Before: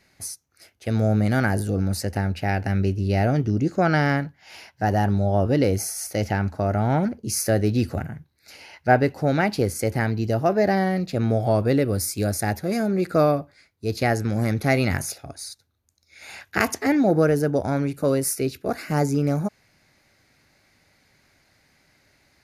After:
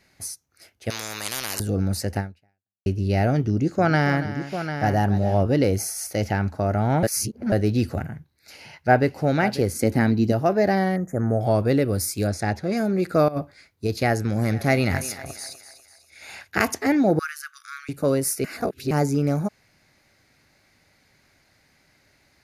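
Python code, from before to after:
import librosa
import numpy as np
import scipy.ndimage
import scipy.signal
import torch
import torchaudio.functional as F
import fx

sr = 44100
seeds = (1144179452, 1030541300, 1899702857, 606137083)

y = fx.spectral_comp(x, sr, ratio=10.0, at=(0.9, 1.6))
y = fx.echo_multitap(y, sr, ms=(282, 746), db=(-13.0, -9.0), at=(3.5, 5.43))
y = fx.echo_throw(y, sr, start_s=8.11, length_s=0.98, ms=540, feedback_pct=15, wet_db=-15.0)
y = fx.small_body(y, sr, hz=(250.0, 3900.0), ring_ms=30, db=10, at=(9.74, 10.32))
y = fx.cheby1_bandstop(y, sr, low_hz=1900.0, high_hz=6400.0, order=4, at=(10.96, 11.41))
y = fx.lowpass(y, sr, hz=6000.0, slope=12, at=(12.27, 12.77))
y = fx.over_compress(y, sr, threshold_db=-25.0, ratio=-0.5, at=(13.28, 13.87))
y = fx.echo_thinned(y, sr, ms=246, feedback_pct=47, hz=420.0, wet_db=-11.5, at=(14.43, 16.46), fade=0.02)
y = fx.brickwall_highpass(y, sr, low_hz=1100.0, at=(17.19, 17.89))
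y = fx.edit(y, sr, fx.fade_out_span(start_s=2.19, length_s=0.67, curve='exp'),
    fx.reverse_span(start_s=7.03, length_s=0.49),
    fx.reverse_span(start_s=18.44, length_s=0.47), tone=tone)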